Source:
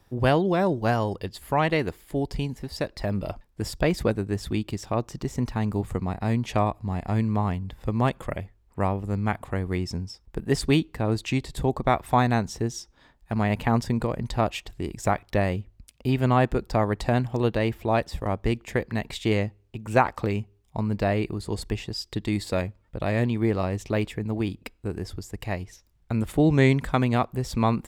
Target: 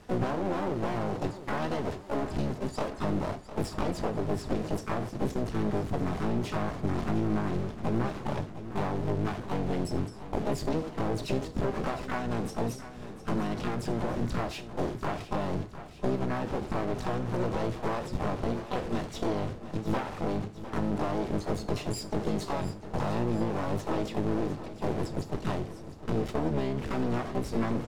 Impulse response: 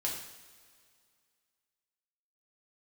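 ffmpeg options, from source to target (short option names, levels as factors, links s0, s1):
-filter_complex "[0:a]aeval=exprs='val(0)+0.5*0.0596*sgn(val(0))':c=same,lowpass=f=6500:w=0.5412,lowpass=f=6500:w=1.3066,agate=range=0.0501:threshold=0.0501:ratio=16:detection=peak,lowshelf=f=85:g=-11,asplit=3[s0][s1][s2];[s1]asetrate=66075,aresample=44100,atempo=0.66742,volume=0.794[s3];[s2]asetrate=88200,aresample=44100,atempo=0.5,volume=0.501[s4];[s0][s3][s4]amix=inputs=3:normalize=0,acompressor=threshold=0.0282:ratio=6,tiltshelf=f=840:g=6.5,aeval=exprs='clip(val(0),-1,0.0106)':c=same,aecho=1:1:705|1410|2115|2820|3525|4230:0.211|0.123|0.0711|0.0412|0.0239|0.0139,asplit=2[s5][s6];[1:a]atrim=start_sample=2205,afade=t=out:st=0.14:d=0.01,atrim=end_sample=6615[s7];[s6][s7]afir=irnorm=-1:irlink=0,volume=0.335[s8];[s5][s8]amix=inputs=2:normalize=0"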